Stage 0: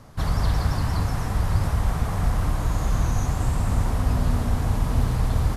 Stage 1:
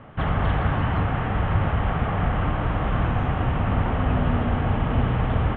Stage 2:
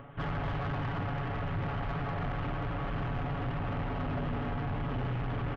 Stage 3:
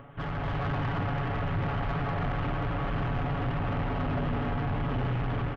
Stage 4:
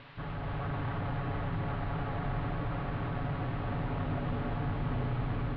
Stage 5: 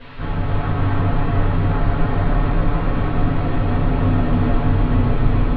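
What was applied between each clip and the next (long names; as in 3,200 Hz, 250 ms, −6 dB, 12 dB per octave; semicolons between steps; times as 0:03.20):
elliptic low-pass filter 3,100 Hz, stop band 40 dB; low-shelf EQ 81 Hz −12 dB; notch filter 1,000 Hz, Q 13; level +6.5 dB
comb filter 7.1 ms, depth 90%; upward compression, threshold −37 dBFS; soft clipping −21 dBFS, distortion −11 dB; level −8.5 dB
automatic gain control gain up to 4 dB
noise in a band 860–4,200 Hz −46 dBFS; high-frequency loss of the air 390 metres; echo with a time of its own for lows and highs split 390 Hz, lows 591 ms, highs 277 ms, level −6.5 dB; level −4.5 dB
convolution reverb RT60 0.60 s, pre-delay 4 ms, DRR −12 dB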